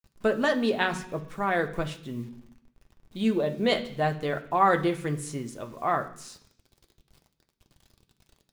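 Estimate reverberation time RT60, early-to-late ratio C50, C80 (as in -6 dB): 0.65 s, 13.5 dB, 16.5 dB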